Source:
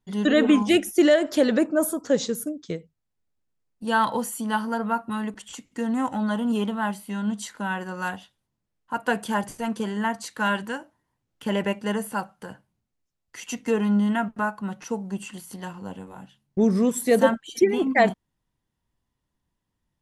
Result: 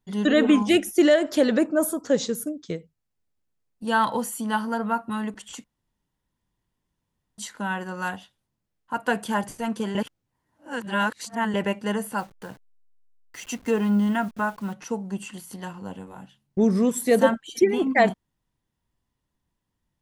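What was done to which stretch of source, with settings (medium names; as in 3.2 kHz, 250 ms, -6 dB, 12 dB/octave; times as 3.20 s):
5.64–7.38 s: room tone
9.95–11.54 s: reverse
12.18–14.73 s: send-on-delta sampling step -46 dBFS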